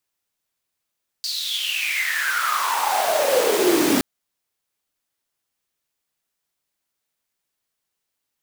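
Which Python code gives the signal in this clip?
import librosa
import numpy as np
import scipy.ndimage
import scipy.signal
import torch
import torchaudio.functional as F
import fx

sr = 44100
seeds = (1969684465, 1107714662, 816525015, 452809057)

y = fx.riser_noise(sr, seeds[0], length_s=2.77, colour='pink', kind='highpass', start_hz=4600.0, end_hz=260.0, q=10.0, swell_db=9.0, law='exponential')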